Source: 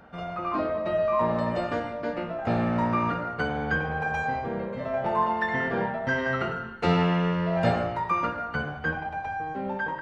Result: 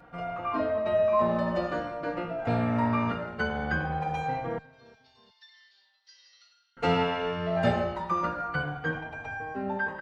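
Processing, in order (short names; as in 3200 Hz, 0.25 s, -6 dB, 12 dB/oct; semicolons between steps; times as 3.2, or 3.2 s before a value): 4.58–6.77 Butterworth band-pass 4800 Hz, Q 2.7; feedback echo 0.359 s, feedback 36%, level -23 dB; endless flanger 3.7 ms -0.46 Hz; gain +1.5 dB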